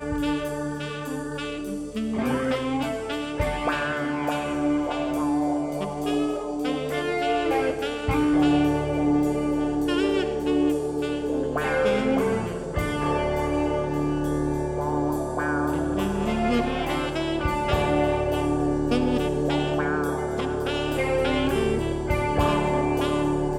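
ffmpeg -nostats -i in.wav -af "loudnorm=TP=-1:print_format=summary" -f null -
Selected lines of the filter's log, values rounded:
Input Integrated:    -24.9 LUFS
Input True Peak:     -10.0 dBTP
Input LRA:             2.9 LU
Input Threshold:     -34.9 LUFS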